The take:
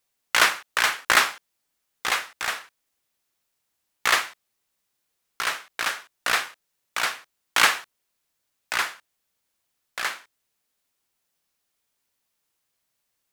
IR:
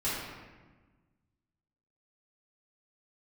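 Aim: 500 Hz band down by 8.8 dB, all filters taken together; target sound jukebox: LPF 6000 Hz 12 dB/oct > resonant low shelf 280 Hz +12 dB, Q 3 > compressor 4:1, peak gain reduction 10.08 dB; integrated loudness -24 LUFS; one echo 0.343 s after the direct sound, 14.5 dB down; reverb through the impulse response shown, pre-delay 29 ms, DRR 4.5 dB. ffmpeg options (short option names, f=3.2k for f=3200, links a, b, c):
-filter_complex "[0:a]equalizer=f=500:t=o:g=-7,aecho=1:1:343:0.188,asplit=2[a][b];[1:a]atrim=start_sample=2205,adelay=29[c];[b][c]afir=irnorm=-1:irlink=0,volume=-12.5dB[d];[a][d]amix=inputs=2:normalize=0,lowpass=6k,lowshelf=f=280:t=q:w=3:g=12,acompressor=threshold=-24dB:ratio=4,volume=6dB"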